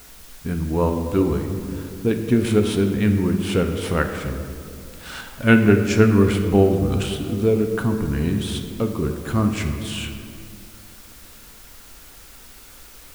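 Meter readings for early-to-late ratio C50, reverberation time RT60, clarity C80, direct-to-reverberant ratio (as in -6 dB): 6.5 dB, 2.4 s, 8.0 dB, 4.5 dB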